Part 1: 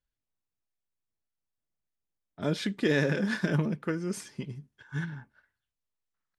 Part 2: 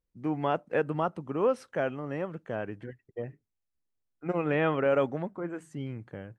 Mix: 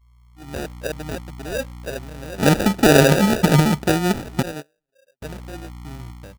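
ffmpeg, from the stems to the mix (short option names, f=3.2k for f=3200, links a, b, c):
-filter_complex "[0:a]aeval=exprs='val(0)+0.00282*(sin(2*PI*60*n/s)+sin(2*PI*2*60*n/s)/2+sin(2*PI*3*60*n/s)/3+sin(2*PI*4*60*n/s)/4+sin(2*PI*5*60*n/s)/5)':c=same,dynaudnorm=f=340:g=3:m=15dB,volume=1dB,asplit=3[a][b][c];[a]atrim=end=4.43,asetpts=PTS-STARTPTS,afade=t=out:st=4.426:d=0.004:c=hsin[d];[b]atrim=start=4.43:end=5.22,asetpts=PTS-STARTPTS,volume=0[e];[c]atrim=start=5.22,asetpts=PTS-STARTPTS,afade=t=in:d=0.004:c=hsin[f];[d][e][f]concat=n=3:v=0:a=1,asplit=2[g][h];[1:a]equalizer=f=230:w=7.3:g=-11.5,adelay=100,volume=-1dB[i];[h]apad=whole_len=286016[j];[i][j]sidechaingate=range=-29dB:threshold=-43dB:ratio=16:detection=peak[k];[g][k]amix=inputs=2:normalize=0,afftdn=nr=25:nf=-38,acrusher=samples=41:mix=1:aa=0.000001"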